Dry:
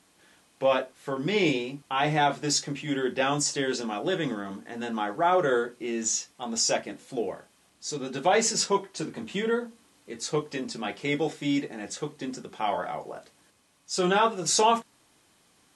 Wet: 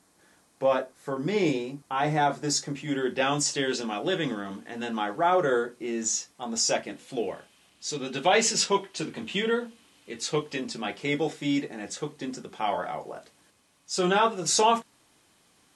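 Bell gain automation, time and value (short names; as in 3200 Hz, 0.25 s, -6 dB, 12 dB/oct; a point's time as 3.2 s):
bell 2900 Hz 0.9 oct
2.52 s -8 dB
3.4 s +3.5 dB
5.05 s +3.5 dB
5.5 s -3 dB
6.5 s -3 dB
7.21 s +7.5 dB
10.32 s +7.5 dB
10.97 s +0.5 dB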